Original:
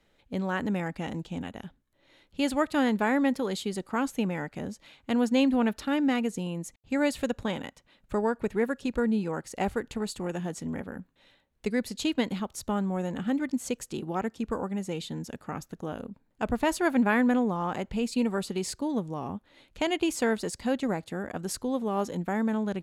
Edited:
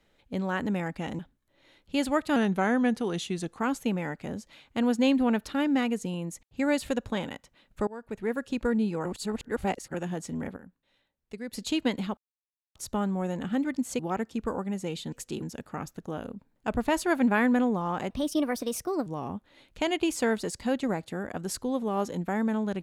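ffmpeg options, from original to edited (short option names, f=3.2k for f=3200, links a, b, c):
-filter_complex "[0:a]asplit=15[a][b][c][d][e][f][g][h][i][j][k][l][m][n][o];[a]atrim=end=1.192[p];[b]atrim=start=1.638:end=2.814[q];[c]atrim=start=2.81:end=3.91,asetpts=PTS-STARTPTS,asetrate=39690,aresample=44100[r];[d]atrim=start=3.906:end=8.2,asetpts=PTS-STARTPTS,afade=t=out:st=4.29:d=0.004:c=hsin:silence=0.0794328[s];[e]atrim=start=8.2:end=9.382,asetpts=PTS-STARTPTS,afade=t=in:d=0.62:silence=0.0794328[t];[f]atrim=start=9.378:end=10.272,asetpts=PTS-STARTPTS,areverse[u];[g]atrim=start=10.268:end=10.892[v];[h]atrim=start=10.888:end=11.862,asetpts=PTS-STARTPTS,volume=-10dB[w];[i]atrim=start=11.858:end=12.5,asetpts=PTS-STARTPTS,afade=t=out:st=0.638:d=0.004:c=hsin,apad=pad_dur=0.58[x];[j]atrim=start=12.5:end=13.742,asetpts=PTS-STARTPTS,afade=t=in:d=0.004:c=hsin[y];[k]atrim=start=14.038:end=15.172[z];[l]atrim=start=13.738:end=14.042[aa];[m]atrim=start=15.168:end=17.854[ab];[n]atrim=start=17.85:end=19.06,asetpts=PTS-STARTPTS,asetrate=55566,aresample=44100[ac];[o]atrim=start=19.056[ad];[p][q]acrossfade=d=0.004:c1=hsin:c2=hsin[ae];[ae][r]acrossfade=d=0.004:c1=hsin:c2=hsin[af];[s][t]concat=n=2:v=0:a=1[ag];[af][ag]acrossfade=d=0.004:c1=hsin:c2=hsin[ah];[ah][u]acrossfade=d=0.004:c1=hsin:c2=hsin[ai];[ai][v]acrossfade=d=0.004:c1=hsin:c2=hsin[aj];[aj][w]acrossfade=d=0.004:c1=hsin:c2=hsin[ak];[x][y]concat=n=2:v=0:a=1[al];[ak][al]acrossfade=d=0.004:c1=hsin:c2=hsin[am];[am][z]acrossfade=d=0.004:c1=hsin:c2=hsin[an];[an][aa]acrossfade=d=0.004:c1=hsin:c2=hsin[ao];[ao][ab]acrossfade=d=0.004:c1=hsin:c2=hsin[ap];[ap][ac]acrossfade=d=0.004:c1=hsin:c2=hsin[aq];[aq][ad]acrossfade=d=0.004:c1=hsin:c2=hsin"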